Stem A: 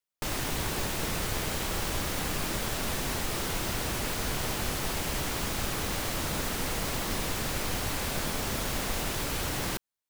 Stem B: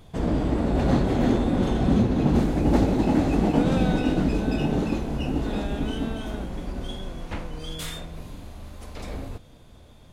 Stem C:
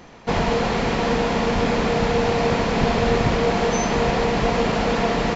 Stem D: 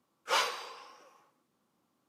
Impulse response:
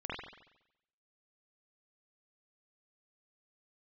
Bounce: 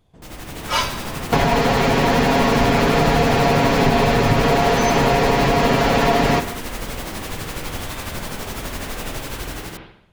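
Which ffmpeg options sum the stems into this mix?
-filter_complex "[0:a]tremolo=f=12:d=0.63,volume=-4.5dB,asplit=2[a][b];[b]volume=-4dB[c];[1:a]acompressor=threshold=-38dB:ratio=2,volume=-15dB,asplit=2[d][e];[e]volume=-4.5dB[f];[2:a]aecho=1:1:7.3:0.65,adelay=1050,volume=2.5dB,asplit=2[g][h];[h]volume=-20.5dB[i];[3:a]aecho=1:1:3.1:0.99,adelay=400,volume=-2dB[j];[a][g]amix=inputs=2:normalize=0,agate=range=-6dB:threshold=-31dB:ratio=16:detection=peak,acompressor=threshold=-23dB:ratio=6,volume=0dB[k];[4:a]atrim=start_sample=2205[l];[c][f][i]amix=inputs=3:normalize=0[m];[m][l]afir=irnorm=-1:irlink=0[n];[d][j][k][n]amix=inputs=4:normalize=0,dynaudnorm=f=130:g=9:m=9dB"

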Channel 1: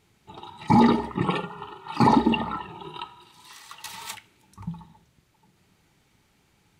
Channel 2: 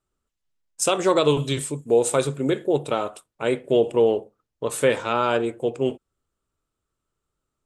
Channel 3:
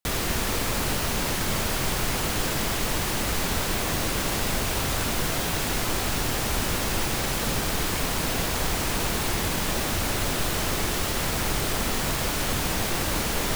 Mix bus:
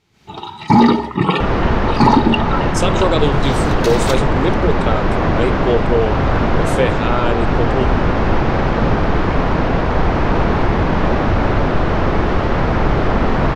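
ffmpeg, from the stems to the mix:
-filter_complex "[0:a]volume=-0.5dB[a];[1:a]adelay=1950,volume=-9dB[b];[2:a]lowpass=1.3k,adelay=1350,volume=1.5dB[c];[a][b][c]amix=inputs=3:normalize=0,highshelf=f=7.1k:t=q:w=1.5:g=-6.5,asoftclip=type=tanh:threshold=-8dB,dynaudnorm=f=110:g=3:m=13dB"

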